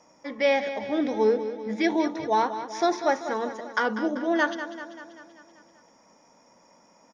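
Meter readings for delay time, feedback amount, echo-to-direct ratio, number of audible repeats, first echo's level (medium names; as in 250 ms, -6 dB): 194 ms, 58%, -9.0 dB, 6, -11.0 dB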